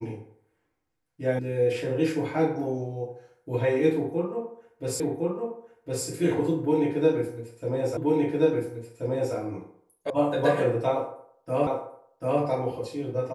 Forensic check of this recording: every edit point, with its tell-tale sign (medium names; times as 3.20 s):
1.39 s: sound stops dead
5.00 s: repeat of the last 1.06 s
7.97 s: repeat of the last 1.38 s
10.10 s: sound stops dead
11.67 s: repeat of the last 0.74 s